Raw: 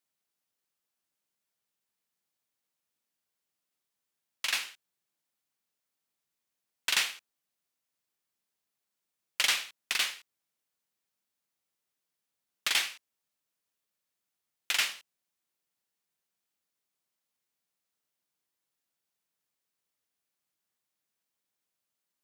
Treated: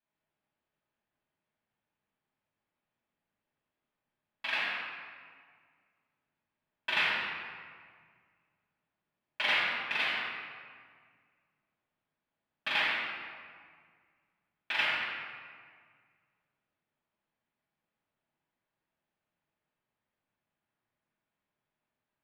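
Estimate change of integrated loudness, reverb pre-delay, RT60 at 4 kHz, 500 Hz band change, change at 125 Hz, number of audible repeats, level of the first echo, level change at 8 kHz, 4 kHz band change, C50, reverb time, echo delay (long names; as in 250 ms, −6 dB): −1.5 dB, 5 ms, 1.2 s, +7.5 dB, can't be measured, no echo audible, no echo audible, below −20 dB, −3.5 dB, −1.5 dB, 1.9 s, no echo audible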